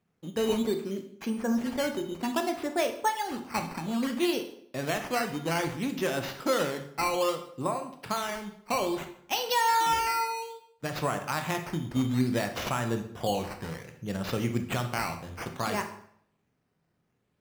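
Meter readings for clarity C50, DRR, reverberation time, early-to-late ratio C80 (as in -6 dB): 9.5 dB, 6.0 dB, 0.65 s, 13.0 dB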